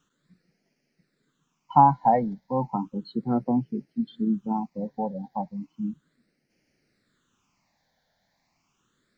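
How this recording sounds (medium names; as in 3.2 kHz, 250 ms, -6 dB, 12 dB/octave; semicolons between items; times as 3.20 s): phasing stages 8, 0.34 Hz, lowest notch 350–1100 Hz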